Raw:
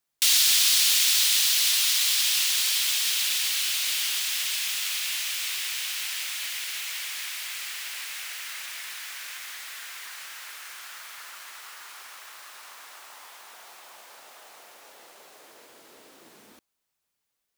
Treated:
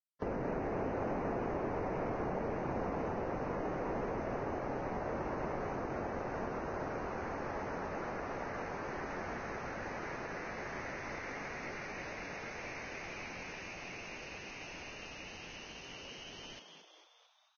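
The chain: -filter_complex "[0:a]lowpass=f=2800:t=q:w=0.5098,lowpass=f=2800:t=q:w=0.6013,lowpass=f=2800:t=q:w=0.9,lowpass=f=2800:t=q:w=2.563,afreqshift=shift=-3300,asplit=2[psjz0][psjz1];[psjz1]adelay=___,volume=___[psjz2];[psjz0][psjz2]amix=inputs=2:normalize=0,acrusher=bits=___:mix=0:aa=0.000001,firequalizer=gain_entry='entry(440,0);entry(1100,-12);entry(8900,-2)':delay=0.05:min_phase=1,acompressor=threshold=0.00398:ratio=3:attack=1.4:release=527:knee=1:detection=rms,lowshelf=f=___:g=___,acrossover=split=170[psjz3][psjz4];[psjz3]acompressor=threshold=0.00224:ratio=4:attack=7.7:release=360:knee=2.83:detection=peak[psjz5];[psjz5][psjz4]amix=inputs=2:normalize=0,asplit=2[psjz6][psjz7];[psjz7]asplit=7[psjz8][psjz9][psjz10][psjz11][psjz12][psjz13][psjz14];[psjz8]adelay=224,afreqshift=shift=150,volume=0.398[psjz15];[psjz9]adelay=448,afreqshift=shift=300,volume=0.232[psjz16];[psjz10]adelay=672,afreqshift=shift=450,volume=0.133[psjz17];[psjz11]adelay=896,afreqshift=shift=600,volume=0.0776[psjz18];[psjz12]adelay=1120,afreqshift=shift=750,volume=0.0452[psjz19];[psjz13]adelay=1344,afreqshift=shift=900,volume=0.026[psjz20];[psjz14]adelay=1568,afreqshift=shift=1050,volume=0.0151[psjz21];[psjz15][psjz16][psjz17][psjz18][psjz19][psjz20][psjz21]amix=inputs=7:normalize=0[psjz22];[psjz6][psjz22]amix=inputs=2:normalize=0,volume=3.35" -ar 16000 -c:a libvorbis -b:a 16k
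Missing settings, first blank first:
22, 0.299, 8, 310, 6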